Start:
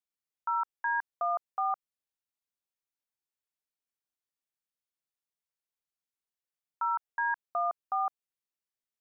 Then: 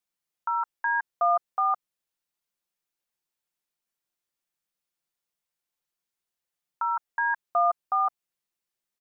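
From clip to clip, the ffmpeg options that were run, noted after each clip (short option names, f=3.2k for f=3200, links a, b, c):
-af "aecho=1:1:5.7:0.41,volume=5dB"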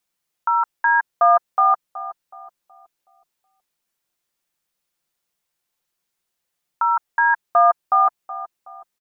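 -filter_complex "[0:a]asplit=2[a][b];[b]adelay=372,lowpass=f=930:p=1,volume=-12dB,asplit=2[c][d];[d]adelay=372,lowpass=f=930:p=1,volume=0.48,asplit=2[e][f];[f]adelay=372,lowpass=f=930:p=1,volume=0.48,asplit=2[g][h];[h]adelay=372,lowpass=f=930:p=1,volume=0.48,asplit=2[i][j];[j]adelay=372,lowpass=f=930:p=1,volume=0.48[k];[a][c][e][g][i][k]amix=inputs=6:normalize=0,volume=8.5dB"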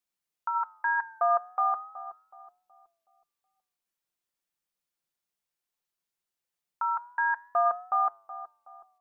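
-af "flanger=delay=8.8:depth=3.3:regen=-90:speed=0.38:shape=triangular,volume=-5.5dB"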